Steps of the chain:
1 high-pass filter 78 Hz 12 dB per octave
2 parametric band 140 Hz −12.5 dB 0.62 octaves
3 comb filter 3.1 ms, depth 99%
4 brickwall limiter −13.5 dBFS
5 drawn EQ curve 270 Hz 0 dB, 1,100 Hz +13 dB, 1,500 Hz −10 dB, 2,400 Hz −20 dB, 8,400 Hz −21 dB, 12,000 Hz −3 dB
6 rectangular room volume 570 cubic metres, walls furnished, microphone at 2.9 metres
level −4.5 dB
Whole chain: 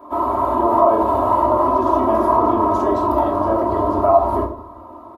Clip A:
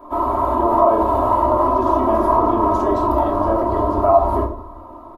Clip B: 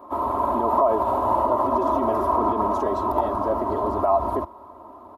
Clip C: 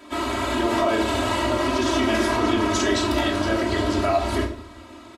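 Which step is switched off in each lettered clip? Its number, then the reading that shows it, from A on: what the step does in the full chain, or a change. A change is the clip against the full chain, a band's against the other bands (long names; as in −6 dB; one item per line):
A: 1, 125 Hz band +3.0 dB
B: 6, change in crest factor −1.5 dB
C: 5, 2 kHz band +17.5 dB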